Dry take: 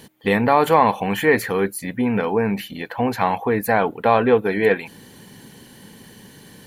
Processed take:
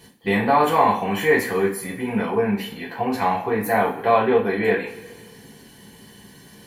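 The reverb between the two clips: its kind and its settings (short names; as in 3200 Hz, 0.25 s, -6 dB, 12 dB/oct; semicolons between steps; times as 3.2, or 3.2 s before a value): two-slope reverb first 0.36 s, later 1.7 s, from -18 dB, DRR -5.5 dB; gain -8 dB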